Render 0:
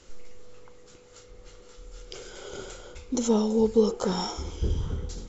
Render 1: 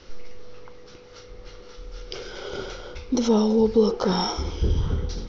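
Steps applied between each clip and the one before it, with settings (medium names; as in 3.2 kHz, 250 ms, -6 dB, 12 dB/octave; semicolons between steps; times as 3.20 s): Chebyshev low-pass 5.8 kHz, order 6; in parallel at +2.5 dB: peak limiter -22.5 dBFS, peak gain reduction 11.5 dB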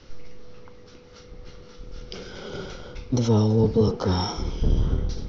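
octave divider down 1 oct, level +3 dB; trim -3 dB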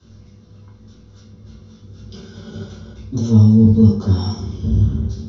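reverberation RT60 0.45 s, pre-delay 3 ms, DRR -5.5 dB; trim -15.5 dB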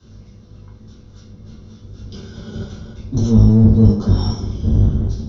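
octave divider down 1 oct, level -3 dB; in parallel at -0.5 dB: peak limiter -9 dBFS, peak gain reduction 10 dB; on the sum: trim -4.5 dB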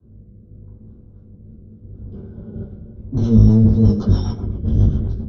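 level-controlled noise filter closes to 470 Hz, open at -7.5 dBFS; rotary cabinet horn 0.8 Hz, later 7.5 Hz, at 3.00 s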